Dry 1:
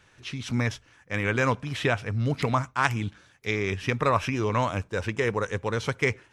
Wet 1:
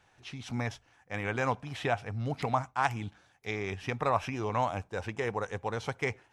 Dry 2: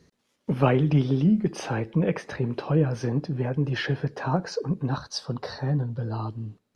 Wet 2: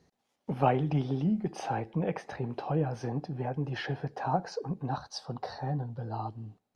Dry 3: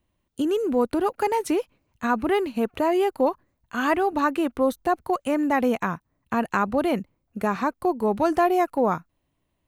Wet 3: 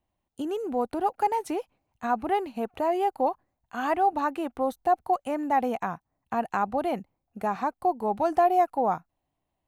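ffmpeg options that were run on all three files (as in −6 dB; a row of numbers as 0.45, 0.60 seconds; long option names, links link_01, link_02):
-af "equalizer=frequency=770:width_type=o:width=0.46:gain=12.5,volume=-8dB"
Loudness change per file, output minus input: −6.0, −6.5, −3.5 LU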